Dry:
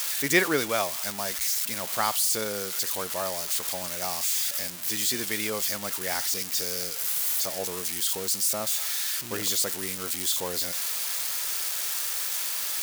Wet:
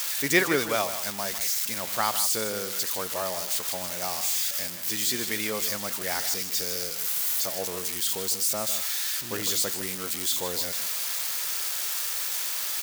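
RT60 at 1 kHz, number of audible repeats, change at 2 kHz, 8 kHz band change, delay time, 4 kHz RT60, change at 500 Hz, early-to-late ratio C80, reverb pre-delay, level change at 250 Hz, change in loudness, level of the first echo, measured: no reverb audible, 1, +0.5 dB, −0.5 dB, 154 ms, no reverb audible, +0.5 dB, no reverb audible, no reverb audible, +0.5 dB, 0.0 dB, −11.0 dB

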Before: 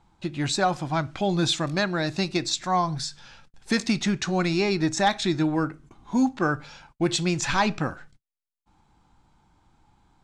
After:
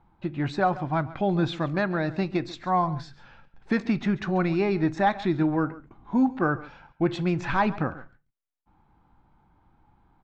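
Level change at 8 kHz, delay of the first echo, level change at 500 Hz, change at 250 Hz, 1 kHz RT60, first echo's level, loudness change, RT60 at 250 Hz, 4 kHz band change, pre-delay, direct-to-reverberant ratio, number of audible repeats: below −20 dB, 138 ms, 0.0 dB, 0.0 dB, no reverb audible, −18.0 dB, −1.0 dB, no reverb audible, −12.5 dB, no reverb audible, no reverb audible, 1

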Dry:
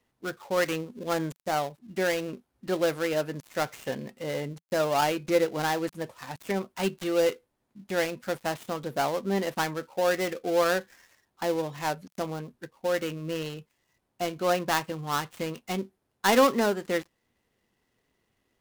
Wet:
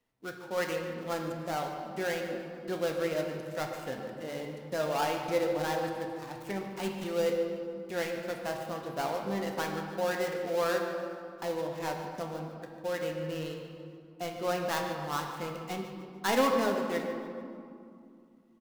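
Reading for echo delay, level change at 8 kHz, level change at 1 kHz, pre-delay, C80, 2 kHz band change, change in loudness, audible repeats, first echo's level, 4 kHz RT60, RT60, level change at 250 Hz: 147 ms, −6.0 dB, −4.5 dB, 4 ms, 5.0 dB, −5.0 dB, −4.5 dB, 1, −14.5 dB, 1.3 s, 2.5 s, −4.5 dB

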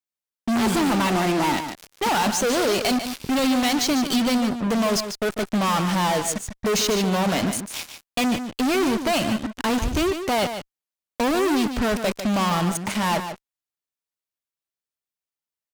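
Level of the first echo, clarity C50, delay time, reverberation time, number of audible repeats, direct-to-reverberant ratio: −9.0 dB, no reverb audible, 147 ms, no reverb audible, 1, no reverb audible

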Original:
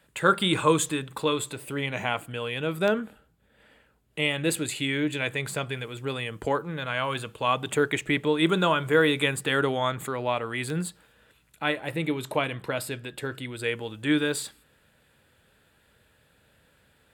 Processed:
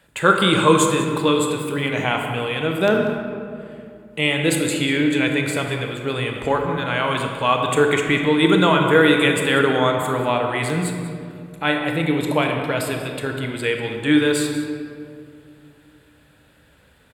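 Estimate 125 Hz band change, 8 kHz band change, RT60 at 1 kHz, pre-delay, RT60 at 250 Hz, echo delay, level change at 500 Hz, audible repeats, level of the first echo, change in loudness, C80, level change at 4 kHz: +8.0 dB, +5.5 dB, 2.2 s, 25 ms, 3.0 s, 191 ms, +8.0 dB, 1, −14.5 dB, +7.5 dB, 4.5 dB, +6.5 dB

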